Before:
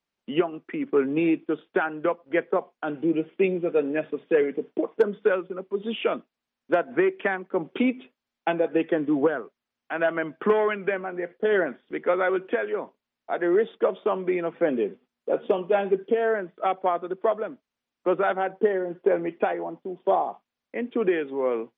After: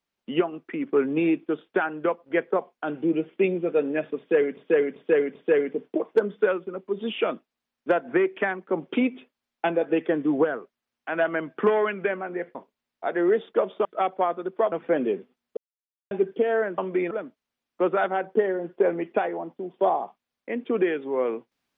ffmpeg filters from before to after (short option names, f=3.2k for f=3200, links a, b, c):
-filter_complex "[0:a]asplit=11[a][b][c][d][e][f][g][h][i][j][k];[a]atrim=end=4.572[l];[b]atrim=start=4.178:end=4.572[m];[c]atrim=start=4.178:end=4.572[n];[d]atrim=start=4.178:end=11.382[o];[e]atrim=start=12.808:end=14.112[p];[f]atrim=start=16.498:end=17.372[q];[g]atrim=start=14.438:end=15.29,asetpts=PTS-STARTPTS,afade=t=out:st=0.848:d=0.004:c=hsin[r];[h]atrim=start=15.29:end=15.83,asetpts=PTS-STARTPTS,volume=0[s];[i]atrim=start=15.83:end=16.502,asetpts=PTS-STARTPTS,afade=t=in:d=0.004:c=hsin[t];[j]atrim=start=14.108:end=14.442[u];[k]atrim=start=17.368[v];[l][m]acrossfade=d=0.004:c1=hsin:c2=hsin[w];[w][n]acrossfade=d=0.004:c1=hsin:c2=hsin[x];[x][o]acrossfade=d=0.004:c1=hsin:c2=hsin[y];[y][p]acrossfade=d=0.004:c1=hsin:c2=hsin[z];[z][q]acrossfade=d=0.004:c1=hsin:c2=hsin[aa];[r][s][t]concat=n=3:v=0:a=1[ab];[aa][ab]acrossfade=d=0.004:c1=hsin:c2=hsin[ac];[ac][u]acrossfade=d=0.004:c1=hsin:c2=hsin[ad];[ad][v]acrossfade=d=0.004:c1=hsin:c2=hsin"